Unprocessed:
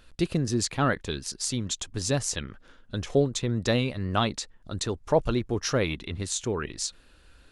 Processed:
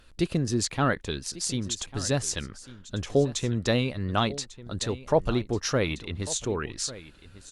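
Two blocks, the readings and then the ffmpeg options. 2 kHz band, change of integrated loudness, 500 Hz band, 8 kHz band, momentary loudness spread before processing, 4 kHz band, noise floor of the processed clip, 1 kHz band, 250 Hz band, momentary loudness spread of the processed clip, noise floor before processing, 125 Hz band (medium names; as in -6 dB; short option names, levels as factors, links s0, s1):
0.0 dB, 0.0 dB, 0.0 dB, 0.0 dB, 8 LU, 0.0 dB, -52 dBFS, 0.0 dB, 0.0 dB, 9 LU, -57 dBFS, 0.0 dB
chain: -af "aecho=1:1:1147:0.141" -ar 48000 -c:a libopus -b:a 64k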